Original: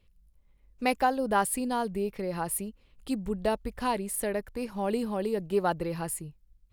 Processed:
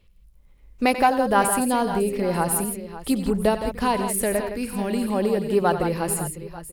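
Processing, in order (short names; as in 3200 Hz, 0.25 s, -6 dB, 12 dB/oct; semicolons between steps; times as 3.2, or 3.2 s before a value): recorder AGC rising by 5.4 dB/s; 4.53–5.08 band shelf 720 Hz -9 dB; tapped delay 88/98/165/552/891 ms -12.5/-17/-8.5/-14.5/-20 dB; gain +6 dB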